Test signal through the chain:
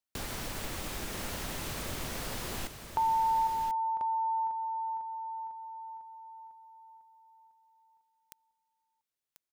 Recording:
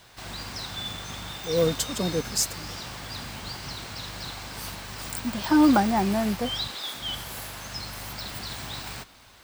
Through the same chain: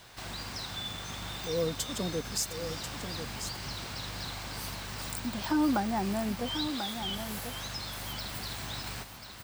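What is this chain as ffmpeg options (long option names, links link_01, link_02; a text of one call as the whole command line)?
ffmpeg -i in.wav -filter_complex "[0:a]acompressor=threshold=-41dB:ratio=1.5,asplit=2[link_01][link_02];[link_02]aecho=0:1:1040:0.376[link_03];[link_01][link_03]amix=inputs=2:normalize=0" out.wav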